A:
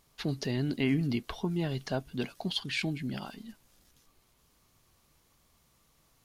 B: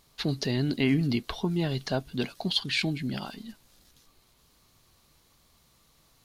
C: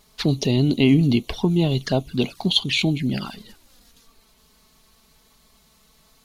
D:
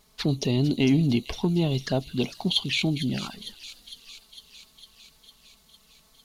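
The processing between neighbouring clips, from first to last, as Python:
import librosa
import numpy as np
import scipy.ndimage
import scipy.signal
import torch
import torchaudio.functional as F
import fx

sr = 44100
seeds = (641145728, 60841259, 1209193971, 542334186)

y1 = fx.peak_eq(x, sr, hz=4100.0, db=5.5, octaves=0.47)
y1 = y1 * 10.0 ** (3.5 / 20.0)
y2 = fx.env_flanger(y1, sr, rest_ms=4.9, full_db=-27.0)
y2 = y2 * 10.0 ** (9.0 / 20.0)
y3 = 10.0 ** (-6.5 / 20.0) * np.tanh(y2 / 10.0 ** (-6.5 / 20.0))
y3 = fx.echo_wet_highpass(y3, sr, ms=454, feedback_pct=69, hz=5000.0, wet_db=-5.0)
y3 = y3 * 10.0 ** (-4.0 / 20.0)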